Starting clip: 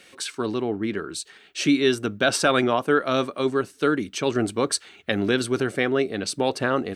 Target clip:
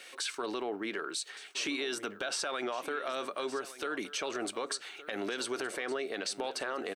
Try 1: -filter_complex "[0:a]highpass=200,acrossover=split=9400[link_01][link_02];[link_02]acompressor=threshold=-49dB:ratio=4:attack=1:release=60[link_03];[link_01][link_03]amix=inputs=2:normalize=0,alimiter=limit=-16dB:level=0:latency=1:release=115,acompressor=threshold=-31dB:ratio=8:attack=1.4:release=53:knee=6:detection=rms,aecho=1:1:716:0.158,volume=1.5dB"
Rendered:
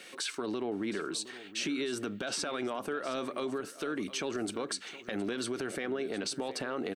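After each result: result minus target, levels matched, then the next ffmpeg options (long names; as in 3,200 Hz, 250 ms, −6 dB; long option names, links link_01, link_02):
echo 451 ms early; 250 Hz band +4.5 dB
-filter_complex "[0:a]highpass=200,acrossover=split=9400[link_01][link_02];[link_02]acompressor=threshold=-49dB:ratio=4:attack=1:release=60[link_03];[link_01][link_03]amix=inputs=2:normalize=0,alimiter=limit=-16dB:level=0:latency=1:release=115,acompressor=threshold=-31dB:ratio=8:attack=1.4:release=53:knee=6:detection=rms,aecho=1:1:1167:0.158,volume=1.5dB"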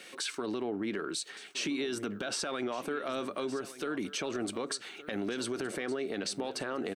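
250 Hz band +4.5 dB
-filter_complex "[0:a]highpass=510,acrossover=split=9400[link_01][link_02];[link_02]acompressor=threshold=-49dB:ratio=4:attack=1:release=60[link_03];[link_01][link_03]amix=inputs=2:normalize=0,alimiter=limit=-16dB:level=0:latency=1:release=115,acompressor=threshold=-31dB:ratio=8:attack=1.4:release=53:knee=6:detection=rms,aecho=1:1:1167:0.158,volume=1.5dB"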